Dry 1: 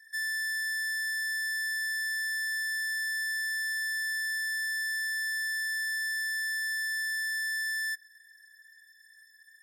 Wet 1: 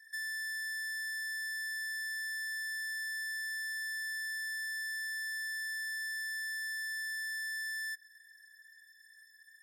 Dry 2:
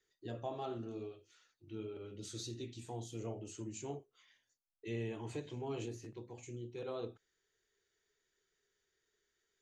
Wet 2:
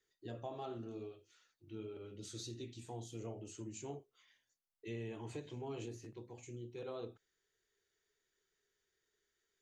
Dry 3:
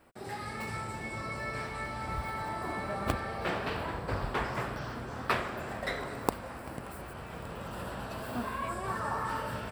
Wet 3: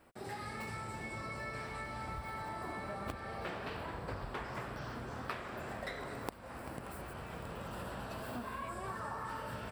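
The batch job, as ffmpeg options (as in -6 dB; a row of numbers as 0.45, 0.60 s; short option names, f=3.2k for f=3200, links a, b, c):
-af "acompressor=threshold=-37dB:ratio=4,volume=-2dB"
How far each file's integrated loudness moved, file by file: -6.5, -2.5, -6.5 LU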